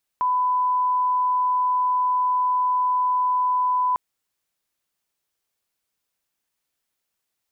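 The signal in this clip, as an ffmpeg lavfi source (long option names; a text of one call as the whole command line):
ffmpeg -f lavfi -i "sine=frequency=1000:duration=3.75:sample_rate=44100,volume=0.06dB" out.wav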